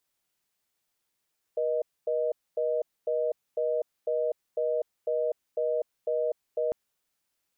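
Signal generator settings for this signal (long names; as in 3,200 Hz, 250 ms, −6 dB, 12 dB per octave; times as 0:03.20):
call progress tone reorder tone, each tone −27.5 dBFS 5.15 s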